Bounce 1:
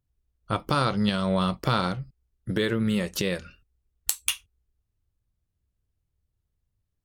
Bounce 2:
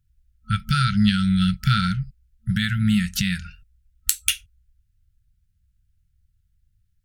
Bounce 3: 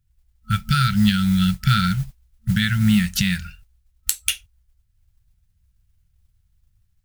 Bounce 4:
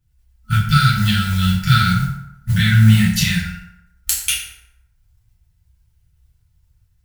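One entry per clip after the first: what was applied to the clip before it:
FFT band-reject 220–1300 Hz; bass shelf 88 Hz +10 dB; trim +5 dB
level rider gain up to 3 dB; modulation noise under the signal 23 dB
FDN reverb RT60 0.85 s, low-frequency decay 0.85×, high-frequency decay 0.6×, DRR -7 dB; trim -2 dB

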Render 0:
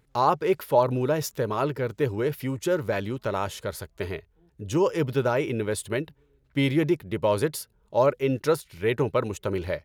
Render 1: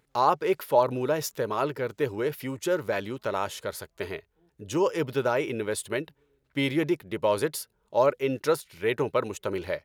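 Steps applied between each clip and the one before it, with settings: bass shelf 170 Hz -12 dB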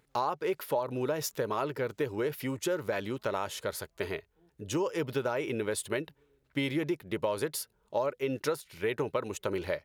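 compression 6:1, threshold -27 dBFS, peak gain reduction 11.5 dB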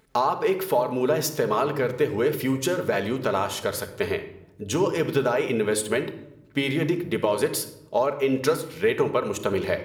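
simulated room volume 2700 m³, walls furnished, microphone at 1.5 m; trim +7 dB

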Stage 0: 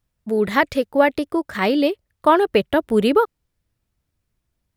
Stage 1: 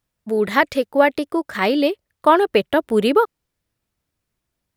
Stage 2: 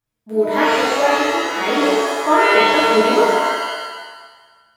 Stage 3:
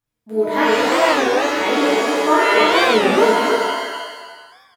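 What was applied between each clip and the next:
bass shelf 130 Hz -11 dB; trim +1.5 dB
pitch-shifted reverb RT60 1.3 s, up +7 st, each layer -2 dB, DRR -6.5 dB; trim -8.5 dB
delay 317 ms -4 dB; on a send at -13 dB: reverberation RT60 0.25 s, pre-delay 3 ms; on the sum: warped record 33 1/3 rpm, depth 250 cents; trim -1 dB

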